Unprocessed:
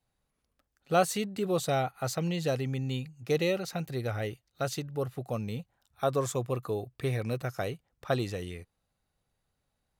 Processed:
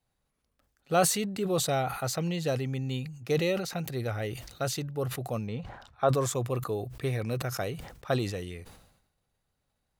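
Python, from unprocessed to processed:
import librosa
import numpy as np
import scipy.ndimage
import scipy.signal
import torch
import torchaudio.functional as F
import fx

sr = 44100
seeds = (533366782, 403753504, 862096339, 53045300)

y = fx.curve_eq(x, sr, hz=(200.0, 1100.0, 4900.0, 13000.0), db=(0, 5, -5, -23), at=(5.47, 6.09))
y = fx.sustainer(y, sr, db_per_s=68.0)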